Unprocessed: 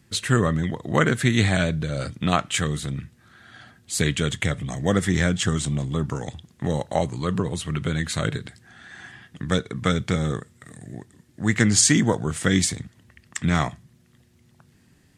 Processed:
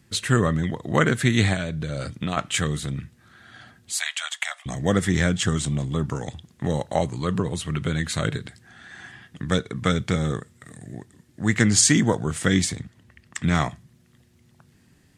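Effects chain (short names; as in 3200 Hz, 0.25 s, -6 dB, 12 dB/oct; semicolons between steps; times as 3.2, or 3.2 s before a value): 1.53–2.37 compressor 5:1, threshold -24 dBFS, peak gain reduction 9 dB; 3.92–4.66 steep high-pass 670 Hz 72 dB/oct; 12.54–13.42 high shelf 5200 Hz -4.5 dB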